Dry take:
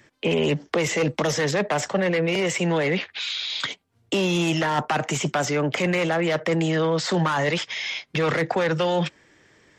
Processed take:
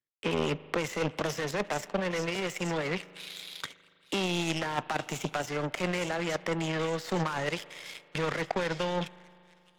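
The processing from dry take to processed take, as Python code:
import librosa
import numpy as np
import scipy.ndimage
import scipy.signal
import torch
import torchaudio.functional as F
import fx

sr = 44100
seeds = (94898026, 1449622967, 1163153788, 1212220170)

y = fx.echo_wet_highpass(x, sr, ms=863, feedback_pct=43, hz=2200.0, wet_db=-8.5)
y = fx.power_curve(y, sr, exponent=2.0)
y = fx.rev_spring(y, sr, rt60_s=2.6, pass_ms=(39,), chirp_ms=20, drr_db=18.0)
y = y * 10.0 ** (-2.0 / 20.0)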